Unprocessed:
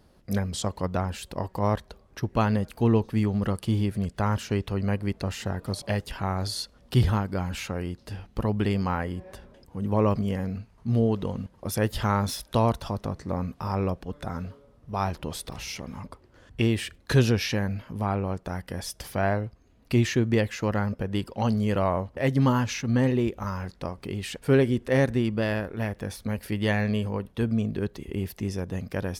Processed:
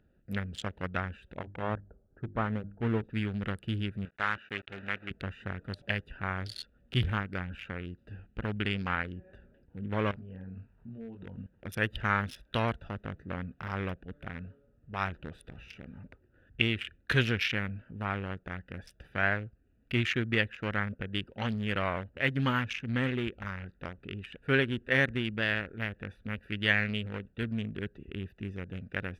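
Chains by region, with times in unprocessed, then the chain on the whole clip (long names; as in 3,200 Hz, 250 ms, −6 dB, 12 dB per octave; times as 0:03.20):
0:01.35–0:03.04: low-pass filter 1,200 Hz 24 dB per octave + mains-hum notches 50/100/150/200/250/300/350 Hz
0:04.05–0:05.11: one scale factor per block 3 bits + low-pass filter 2,000 Hz + spectral tilt +4 dB per octave
0:10.11–0:11.38: parametric band 990 Hz +10 dB 0.52 octaves + downward compressor 4 to 1, threshold −35 dBFS + double-tracking delay 22 ms −3 dB
whole clip: adaptive Wiener filter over 41 samples; flat-topped bell 2,200 Hz +14.5 dB; level −8 dB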